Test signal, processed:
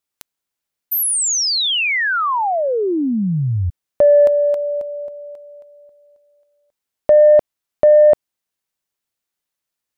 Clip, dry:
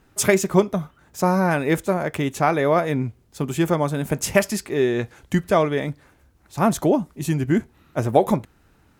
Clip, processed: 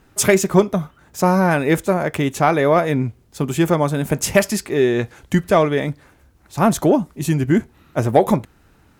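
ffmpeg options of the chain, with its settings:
-af "asoftclip=type=tanh:threshold=0.596,volume=1.58"

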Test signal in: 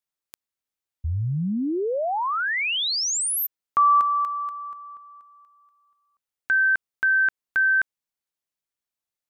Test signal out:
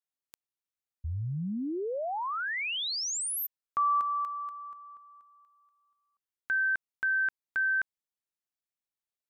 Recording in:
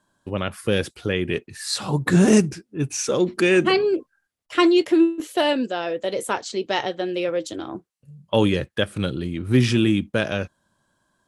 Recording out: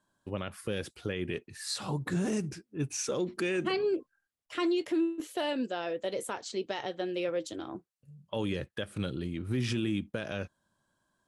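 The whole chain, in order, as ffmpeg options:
-af "alimiter=limit=0.188:level=0:latency=1:release=93,volume=0.398"

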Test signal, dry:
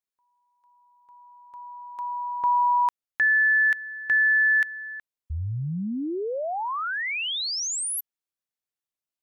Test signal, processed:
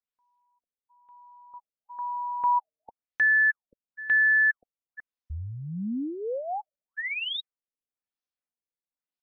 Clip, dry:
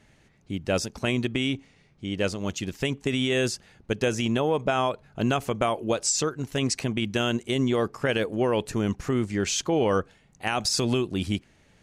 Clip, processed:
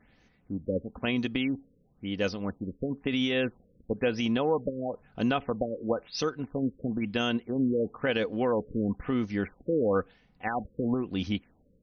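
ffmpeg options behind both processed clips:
-af "aecho=1:1:4:0.41,afftfilt=real='re*lt(b*sr/1024,560*pow(6600/560,0.5+0.5*sin(2*PI*1*pts/sr)))':imag='im*lt(b*sr/1024,560*pow(6600/560,0.5+0.5*sin(2*PI*1*pts/sr)))':win_size=1024:overlap=0.75,volume=0.668"

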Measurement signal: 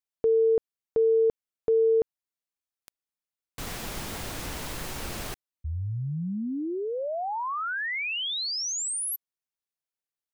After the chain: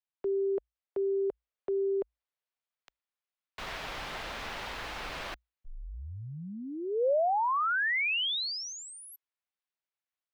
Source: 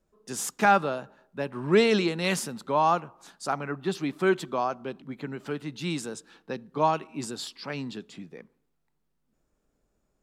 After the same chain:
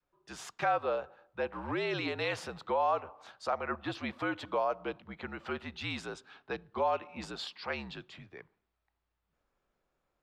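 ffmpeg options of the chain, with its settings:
-filter_complex "[0:a]afreqshift=-58,adynamicequalizer=threshold=0.0112:dfrequency=520:dqfactor=1.6:tfrequency=520:tqfactor=1.6:attack=5:release=100:ratio=0.375:range=4:mode=boostabove:tftype=bell,dynaudnorm=f=850:g=3:m=1.58,alimiter=limit=0.158:level=0:latency=1:release=168,acrossover=split=550 4300:gain=0.251 1 0.0891[s0][s1][s2];[s0][s1][s2]amix=inputs=3:normalize=0,volume=0.794"

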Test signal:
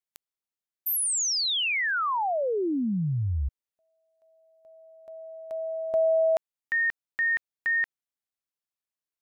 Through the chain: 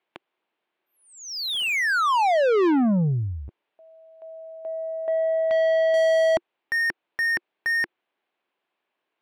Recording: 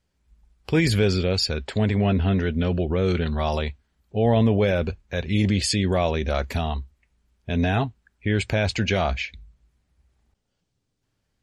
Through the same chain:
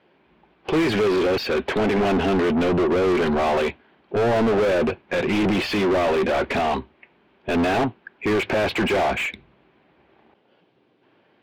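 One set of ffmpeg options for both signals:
-filter_complex "[0:a]highpass=160,equalizer=f=350:t=q:w=4:g=7,equalizer=f=1300:t=q:w=4:g=-5,equalizer=f=1900:t=q:w=4:g=-4,lowpass=f=3200:w=0.5412,lowpass=f=3200:w=1.3066,asplit=2[s0][s1];[s1]highpass=f=720:p=1,volume=70.8,asoftclip=type=tanh:threshold=0.422[s2];[s0][s2]amix=inputs=2:normalize=0,lowpass=f=1500:p=1,volume=0.501,volume=0.562"

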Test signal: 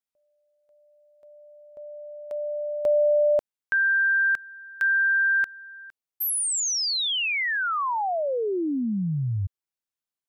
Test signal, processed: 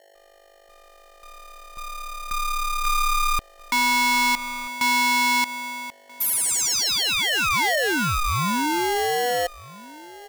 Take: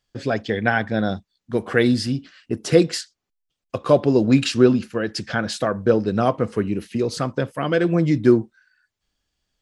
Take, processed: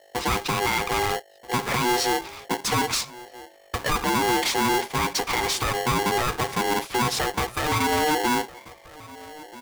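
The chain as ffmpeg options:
-filter_complex "[0:a]adynamicequalizer=threshold=0.0141:dfrequency=1500:dqfactor=2.1:tfrequency=1500:tqfactor=2.1:attack=5:release=100:ratio=0.375:range=3:mode=boostabove:tftype=bell,asplit=2[s0][s1];[s1]acompressor=threshold=0.0447:ratio=6:release=147:detection=peak,volume=1.12[s2];[s0][s2]amix=inputs=2:normalize=0,alimiter=limit=0.376:level=0:latency=1:release=94,aeval=exprs='val(0)+0.00224*(sin(2*PI*50*n/s)+sin(2*PI*2*50*n/s)/2+sin(2*PI*3*50*n/s)/3+sin(2*PI*4*50*n/s)/4+sin(2*PI*5*50*n/s)/5)':c=same,asoftclip=type=tanh:threshold=0.119,asplit=2[s3][s4];[s4]adelay=1283,volume=0.112,highshelf=f=4000:g=-28.9[s5];[s3][s5]amix=inputs=2:normalize=0,aeval=exprs='val(0)*sgn(sin(2*PI*610*n/s))':c=same"

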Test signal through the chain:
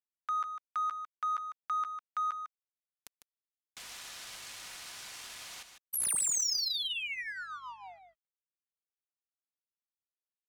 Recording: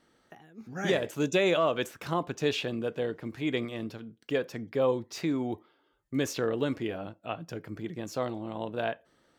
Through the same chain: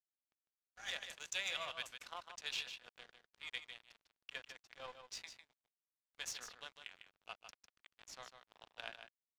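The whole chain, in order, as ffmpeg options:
-filter_complex "[0:a]highpass=f=610:w=0.5412,highpass=f=610:w=1.3066,aderivative,aecho=1:1:4.1:0.33,asplit=2[s0][s1];[s1]acompressor=threshold=0.00631:ratio=6,volume=0.708[s2];[s0][s2]amix=inputs=2:normalize=0,aeval=exprs='val(0)+0.000282*(sin(2*PI*50*n/s)+sin(2*PI*2*50*n/s)/2+sin(2*PI*3*50*n/s)/3+sin(2*PI*4*50*n/s)/4+sin(2*PI*5*50*n/s)/5)':c=same,aeval=exprs='sgn(val(0))*max(abs(val(0))-0.00422,0)':c=same,adynamicsmooth=sensitivity=5.5:basefreq=4000,asplit=2[s3][s4];[s4]aecho=0:1:151:0.376[s5];[s3][s5]amix=inputs=2:normalize=0,volume=1.12"

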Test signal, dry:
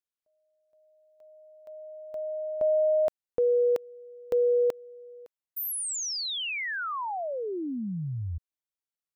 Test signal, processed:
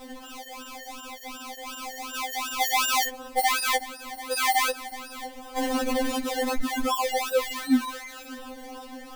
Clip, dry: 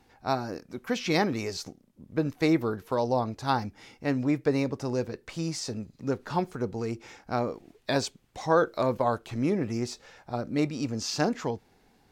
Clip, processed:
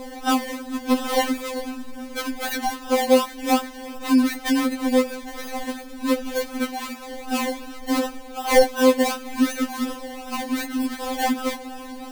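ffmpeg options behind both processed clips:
-af "aeval=exprs='val(0)+0.5*0.0188*sgn(val(0))':c=same,acrusher=samples=28:mix=1:aa=0.000001:lfo=1:lforange=16.8:lforate=2.7,afftfilt=real='re*3.46*eq(mod(b,12),0)':imag='im*3.46*eq(mod(b,12),0)':win_size=2048:overlap=0.75,volume=2"

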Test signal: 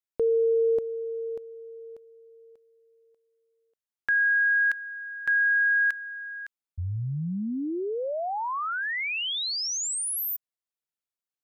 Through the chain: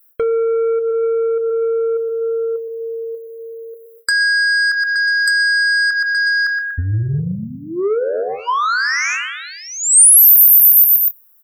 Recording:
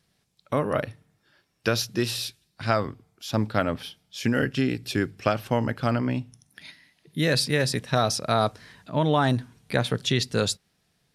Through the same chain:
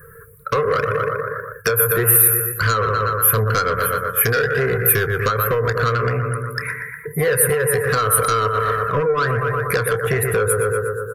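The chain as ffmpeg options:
-filter_complex "[0:a]equalizer=f=5000:t=o:w=0.71:g=-14,aecho=1:1:120|240|360|480|600|720:0.251|0.141|0.0788|0.0441|0.0247|0.0138,areverse,acompressor=mode=upward:threshold=0.0158:ratio=1.5:attack=22:release=44:knee=2.83:detection=peak,areverse,firequalizer=gain_entry='entry(110,0);entry(280,-26);entry(450,12);entry(680,-19);entry(970,4);entry(1400,10);entry(3400,-21);entry(6400,-25);entry(9300,-8);entry(14000,4)':delay=0.05:min_phase=1,acompressor=threshold=0.0224:ratio=8:attack=39:release=104:knee=1:detection=rms,asoftclip=type=tanh:threshold=0.0251,asplit=2[s0][s1];[s1]adelay=28,volume=0.251[s2];[s0][s2]amix=inputs=2:normalize=0,afftdn=nr=19:nf=-56,asuperstop=centerf=870:order=20:qfactor=4.9,aexciter=amount=6.4:drive=6.8:freq=4900,alimiter=level_in=9.44:limit=0.891:release=50:level=0:latency=1,volume=0.891"

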